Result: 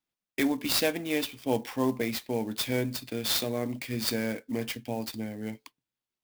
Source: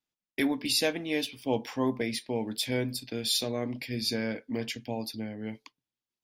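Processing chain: clock jitter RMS 0.028 ms; gain +1 dB

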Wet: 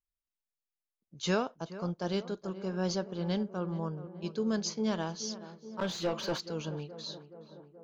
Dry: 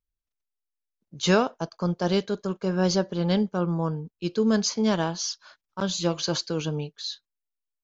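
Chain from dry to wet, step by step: 5.79–6.4 overdrive pedal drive 21 dB, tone 1200 Hz, clips at -11.5 dBFS; tape echo 0.425 s, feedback 78%, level -12 dB, low-pass 1200 Hz; gain -9 dB

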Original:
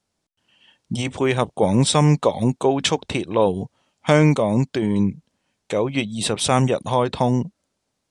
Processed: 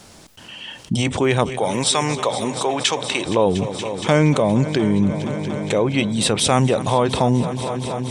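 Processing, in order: 1.57–3.26 HPF 1100 Hz 6 dB/oct; multi-head echo 0.235 s, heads all three, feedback 66%, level -22.5 dB; fast leveller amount 50%; gain -1 dB

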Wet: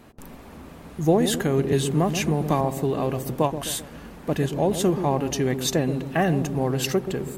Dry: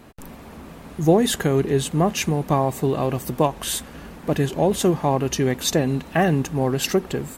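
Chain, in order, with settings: dark delay 0.13 s, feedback 49%, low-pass 540 Hz, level -7.5 dB; 1.72–2.61 three-band squash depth 70%; gain -3 dB

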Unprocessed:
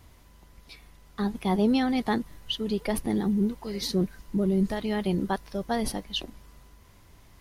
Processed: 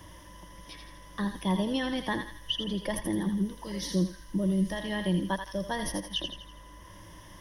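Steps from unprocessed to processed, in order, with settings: ripple EQ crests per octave 1.2, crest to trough 13 dB; thinning echo 82 ms, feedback 45%, high-pass 1100 Hz, level -5 dB; three-band squash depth 40%; gain -4.5 dB

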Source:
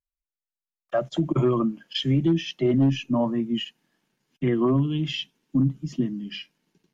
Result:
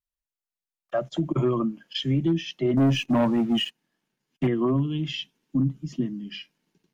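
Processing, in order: 2.77–4.47 sample leveller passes 2; gain -2 dB

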